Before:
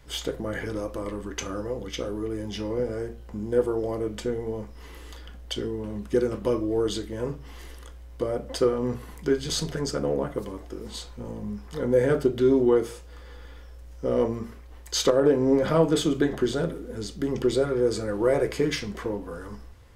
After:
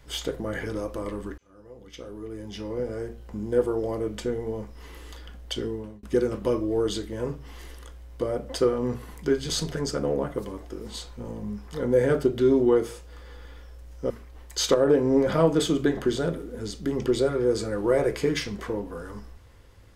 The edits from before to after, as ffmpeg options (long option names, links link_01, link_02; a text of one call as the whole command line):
ffmpeg -i in.wav -filter_complex "[0:a]asplit=4[link_01][link_02][link_03][link_04];[link_01]atrim=end=1.38,asetpts=PTS-STARTPTS,afade=type=out:start_time=1.376:duration=0.004:curve=hsin[link_05];[link_02]atrim=start=1.38:end=6.03,asetpts=PTS-STARTPTS,afade=type=in:duration=1.9,afade=type=out:start_time=4.34:duration=0.31[link_06];[link_03]atrim=start=6.03:end=14.102,asetpts=PTS-STARTPTS,afade=type=in:duration=0.004:curve=hsin[link_07];[link_04]atrim=start=14.458[link_08];[link_05][link_06][link_07]concat=n=3:v=0:a=1[link_09];[link_09][link_08]acrossfade=duration=0.004:curve1=hsin:curve2=hsin" out.wav